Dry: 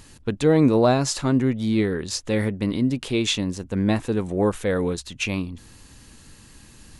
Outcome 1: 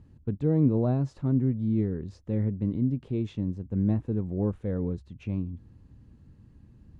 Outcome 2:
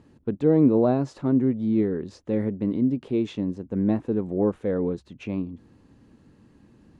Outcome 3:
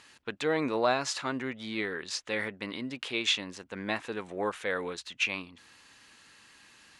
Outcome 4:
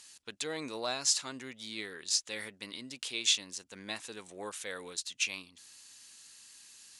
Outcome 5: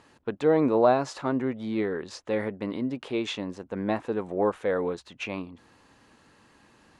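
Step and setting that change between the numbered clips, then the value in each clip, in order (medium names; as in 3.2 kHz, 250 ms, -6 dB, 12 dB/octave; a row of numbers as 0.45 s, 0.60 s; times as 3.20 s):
band-pass filter, frequency: 100 Hz, 280 Hz, 2 kHz, 6.3 kHz, 810 Hz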